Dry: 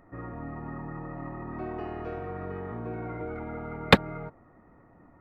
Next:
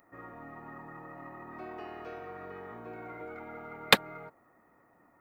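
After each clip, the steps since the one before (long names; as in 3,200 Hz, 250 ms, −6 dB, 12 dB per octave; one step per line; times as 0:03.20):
RIAA equalisation recording
level −4 dB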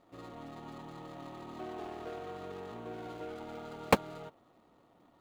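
running median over 25 samples
level +2 dB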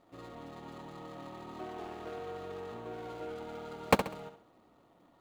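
flutter between parallel walls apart 11.4 metres, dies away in 0.43 s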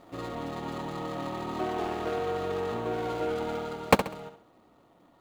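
speech leveller within 4 dB 0.5 s
level +7.5 dB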